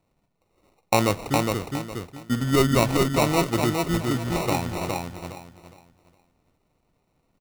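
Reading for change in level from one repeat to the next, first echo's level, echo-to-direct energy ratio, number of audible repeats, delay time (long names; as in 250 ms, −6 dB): −11.5 dB, −3.5 dB, −3.0 dB, 3, 412 ms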